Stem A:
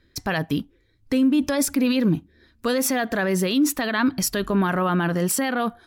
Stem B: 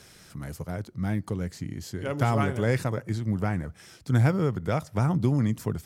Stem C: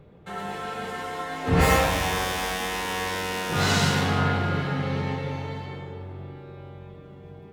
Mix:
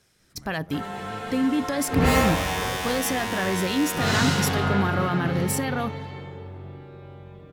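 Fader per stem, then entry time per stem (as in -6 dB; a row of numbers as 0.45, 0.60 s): -4.5, -12.5, -1.0 dB; 0.20, 0.00, 0.45 s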